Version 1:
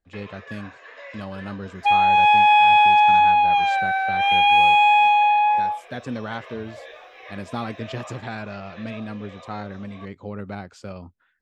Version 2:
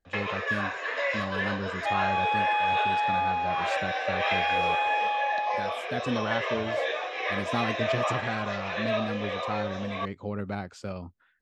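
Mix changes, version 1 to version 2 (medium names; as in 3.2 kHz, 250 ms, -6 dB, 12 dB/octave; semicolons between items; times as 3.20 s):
first sound +12.0 dB; second sound -12.0 dB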